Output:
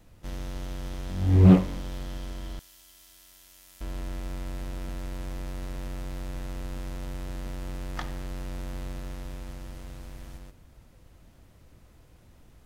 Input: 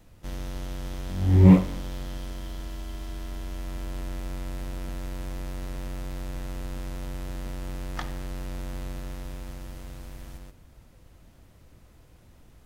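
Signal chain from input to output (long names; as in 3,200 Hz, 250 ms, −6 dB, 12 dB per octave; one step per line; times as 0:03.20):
0:02.59–0:03.81: first-order pre-emphasis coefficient 0.97
highs frequency-modulated by the lows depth 0.48 ms
level −1 dB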